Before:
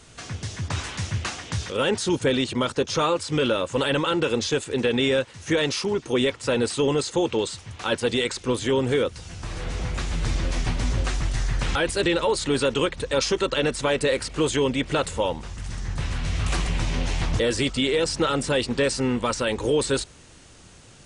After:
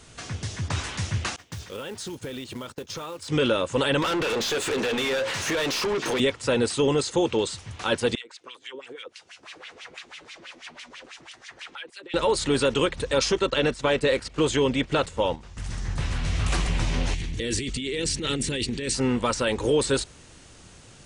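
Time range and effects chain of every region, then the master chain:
1.36–3.28 s: short-mantissa float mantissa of 2-bit + expander -28 dBFS + compression 12:1, threshold -31 dBFS
4.02–6.20 s: compression 16:1, threshold -31 dBFS + hum notches 60/120/180/240/300/360/420/480/540 Hz + overdrive pedal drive 31 dB, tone 3.5 kHz, clips at -17.5 dBFS
8.15–12.14 s: tilt EQ +4 dB/octave + compression, threshold -29 dBFS + LFO band-pass sine 6.1 Hz 290–3000 Hz
13.32–15.57 s: low-pass 8.1 kHz + gate -32 dBFS, range -9 dB
17.14–18.95 s: high-order bell 880 Hz -14 dB + band-stop 5.1 kHz, Q 10 + compressor with a negative ratio -28 dBFS
whole clip: none

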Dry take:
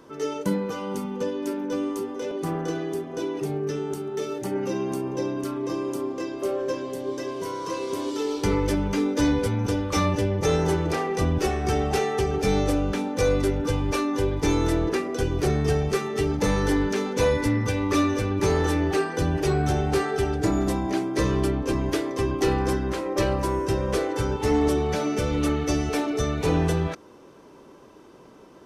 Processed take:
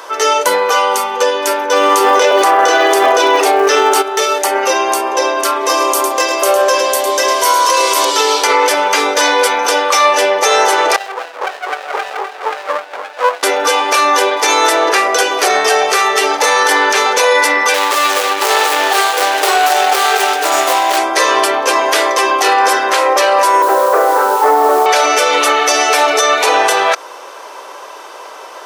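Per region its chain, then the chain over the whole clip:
1.71–4.01 s: treble shelf 6.8 kHz -7.5 dB + crackle 350 per s -53 dBFS + level flattener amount 100%
5.61–8.05 s: treble shelf 7.4 kHz +8.5 dB + delay 106 ms -8 dB
10.96–13.43 s: wah-wah 3.8 Hz 530–1700 Hz, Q 4.8 + sliding maximum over 33 samples
17.74–20.98 s: median filter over 25 samples + tilt EQ +2.5 dB/octave
23.62–24.86 s: CVSD coder 64 kbps + low-pass 1.4 kHz 24 dB/octave + word length cut 8-bit, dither none
whole clip: high-pass 620 Hz 24 dB/octave; loudness maximiser +25.5 dB; trim -1 dB

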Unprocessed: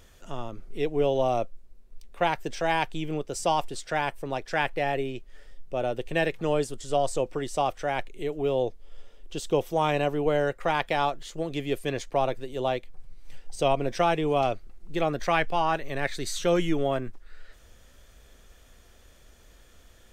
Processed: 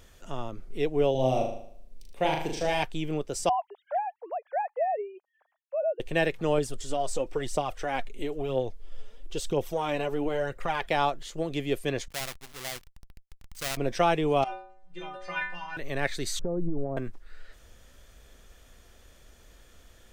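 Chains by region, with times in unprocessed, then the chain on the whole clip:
1.11–2.83 s: peaking EQ 1.3 kHz -11.5 dB 0.97 oct + flutter echo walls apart 6.6 m, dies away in 0.61 s
3.49–6.00 s: formants replaced by sine waves + band-pass filter 740 Hz, Q 2.2
6.58–10.88 s: compression 3:1, threshold -26 dBFS + phaser 1 Hz, delay 5 ms, feedback 48%
12.08–13.77 s: square wave that keeps the level + amplifier tone stack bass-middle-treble 5-5-5
14.44–15.77 s: brick-wall FIR low-pass 10 kHz + peaking EQ 1.7 kHz +10.5 dB 2.8 oct + inharmonic resonator 180 Hz, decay 0.69 s, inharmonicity 0.008
16.39–16.97 s: Bessel low-pass 640 Hz, order 6 + compression 10:1, threshold -28 dBFS + tilt EQ -1.5 dB/octave
whole clip: none

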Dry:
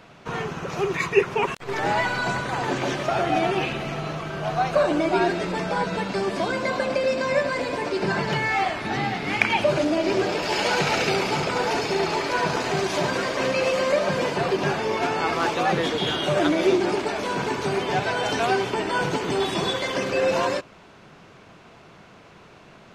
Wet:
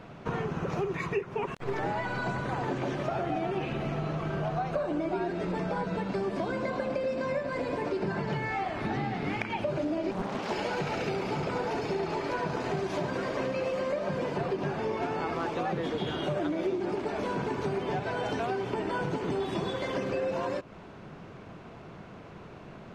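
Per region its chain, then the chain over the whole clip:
10.11–10.51 s: Chebyshev high-pass 380 Hz, order 4 + ring modulator 200 Hz + loudspeaker Doppler distortion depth 0.89 ms
whole clip: bass shelf 470 Hz +5.5 dB; compression, threshold -28 dBFS; treble shelf 2.7 kHz -9 dB

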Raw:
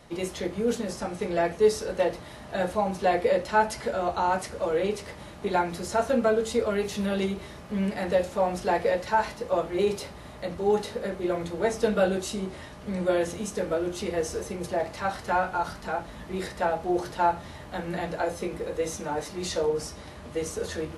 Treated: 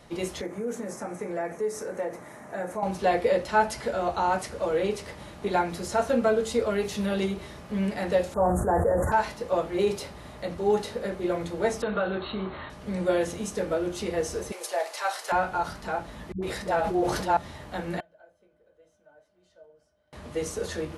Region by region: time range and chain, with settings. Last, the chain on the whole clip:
0.41–2.83 s: high-pass 170 Hz + high-order bell 3.7 kHz -13.5 dB 1.1 oct + compression 2:1, threshold -31 dBFS
8.34–9.12 s: inverse Chebyshev band-stop 2.3–5.3 kHz + peaking EQ 79 Hz +12 dB 0.94 oct + decay stretcher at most 33 dB/s
11.82–12.70 s: compression 3:1, threshold -27 dBFS + brick-wall FIR low-pass 4.4 kHz + peaking EQ 1.2 kHz +9.5 dB 1 oct
14.52–15.32 s: high-pass 490 Hz 24 dB/octave + treble shelf 3.9 kHz +10 dB
16.32–17.37 s: phase dispersion highs, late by 105 ms, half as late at 360 Hz + decay stretcher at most 44 dB/s
18.00–20.13 s: inverted gate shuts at -36 dBFS, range -34 dB + treble shelf 3.8 kHz -5.5 dB + small resonant body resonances 620/1500/3100 Hz, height 18 dB, ringing for 65 ms
whole clip: none

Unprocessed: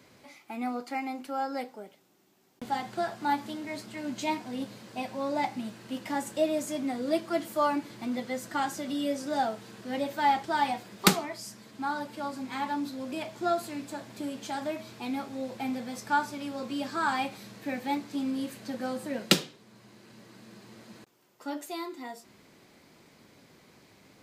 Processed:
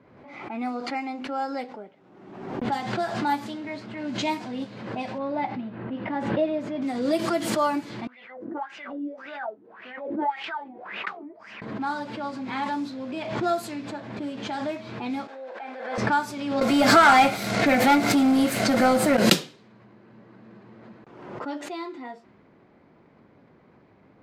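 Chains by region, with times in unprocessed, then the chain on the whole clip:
5.18–6.82 s: distance through air 350 m + tape noise reduction on one side only decoder only
8.07–11.62 s: wah-wah 1.8 Hz 290–2800 Hz, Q 6.1 + bass shelf 75 Hz -10 dB
15.27–15.98 s: ladder high-pass 430 Hz, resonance 30% + peaking EQ 1.6 kHz +9 dB 0.28 oct + decay stretcher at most 26 dB/s
16.61–19.17 s: waveshaping leveller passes 3 + small resonant body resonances 690/1400/2100 Hz, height 12 dB, ringing for 30 ms
whole clip: level-controlled noise filter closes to 1.3 kHz, open at -25 dBFS; swell ahead of each attack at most 49 dB/s; trim +2.5 dB

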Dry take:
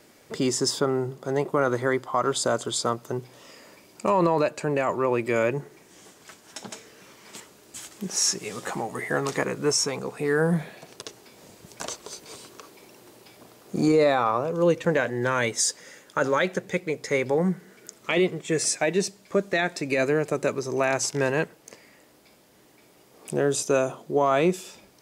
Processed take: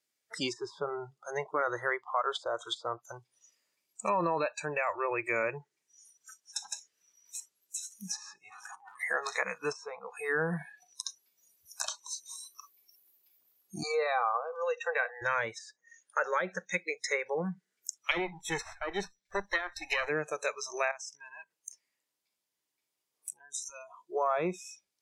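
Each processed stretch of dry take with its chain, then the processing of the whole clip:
8.50–9.03 s: compressor with a negative ratio -35 dBFS, ratio -0.5 + transformer saturation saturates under 3.3 kHz
13.83–15.22 s: elliptic high-pass 470 Hz + treble shelf 2.7 kHz -4 dB + comb 2.6 ms, depth 45%
18.11–20.09 s: comb filter that takes the minimum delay 0.52 ms + hum notches 60/120/180 Hz
20.91–24.09 s: peaking EQ 990 Hz +5 dB 0.22 oct + compression 4:1, threshold -37 dBFS
whole clip: spectral noise reduction 29 dB; tilt shelf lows -9 dB, about 1.4 kHz; low-pass that closes with the level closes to 1 kHz, closed at -20 dBFS; trim -2.5 dB

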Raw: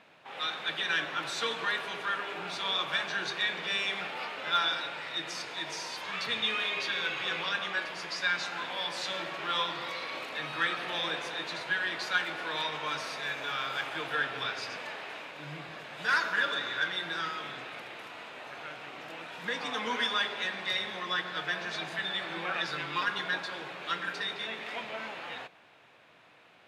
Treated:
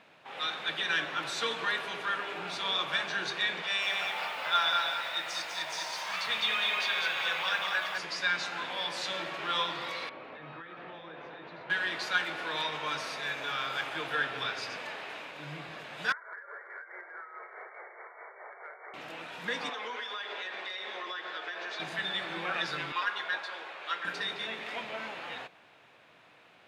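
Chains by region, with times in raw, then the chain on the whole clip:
3.62–7.98 s: resonant low shelf 510 Hz -7.5 dB, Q 1.5 + bit-crushed delay 202 ms, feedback 35%, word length 9-bit, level -4 dB
10.09–11.70 s: compression 12:1, threshold -35 dBFS + tape spacing loss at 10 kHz 43 dB
16.12–18.94 s: brick-wall FIR band-pass 350–2300 Hz + compression 12:1, threshold -39 dBFS + tremolo 4.7 Hz, depth 53%
19.69–21.80 s: high-pass 330 Hz 24 dB/octave + compression 12:1, threshold -33 dBFS + distance through air 76 m
22.92–24.05 s: high-pass 560 Hz + treble shelf 4.9 kHz -8.5 dB
whole clip: none

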